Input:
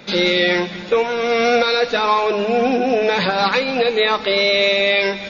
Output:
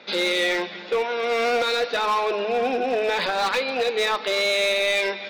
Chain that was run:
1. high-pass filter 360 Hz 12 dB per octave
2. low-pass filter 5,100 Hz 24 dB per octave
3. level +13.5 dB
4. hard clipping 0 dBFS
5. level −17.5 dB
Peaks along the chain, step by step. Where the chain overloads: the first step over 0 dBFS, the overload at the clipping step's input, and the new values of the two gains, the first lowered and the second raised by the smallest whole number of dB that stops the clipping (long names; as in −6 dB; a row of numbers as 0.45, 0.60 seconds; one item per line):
−5.0, −5.0, +8.5, 0.0, −17.5 dBFS
step 3, 8.5 dB
step 3 +4.5 dB, step 5 −8.5 dB